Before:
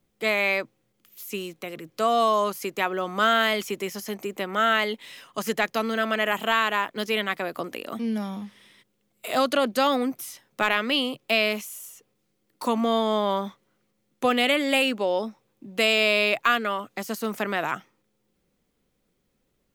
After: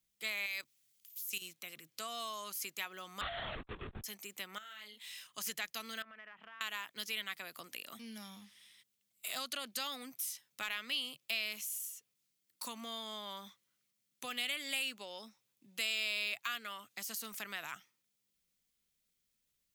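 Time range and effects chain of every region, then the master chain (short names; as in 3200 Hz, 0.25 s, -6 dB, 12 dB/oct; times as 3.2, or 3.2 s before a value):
0.46–1.42 high shelf 2100 Hz +11.5 dB + level quantiser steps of 14 dB
3.21–4.04 steep low-pass 1200 Hz 72 dB/oct + sample leveller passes 5 + LPC vocoder at 8 kHz whisper
4.58–5.27 doubler 33 ms -4.5 dB + compressor 20:1, threshold -34 dBFS
6.02–6.61 ladder low-pass 2200 Hz, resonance 25% + compressor 12:1, threshold -33 dBFS
whole clip: high shelf 2500 Hz +8.5 dB; compressor 2:1, threshold -24 dBFS; passive tone stack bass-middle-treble 5-5-5; gain -3.5 dB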